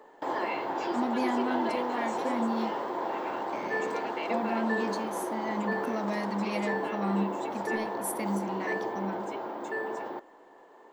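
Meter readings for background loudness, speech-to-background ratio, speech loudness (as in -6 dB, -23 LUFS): -33.0 LUFS, -1.5 dB, -34.5 LUFS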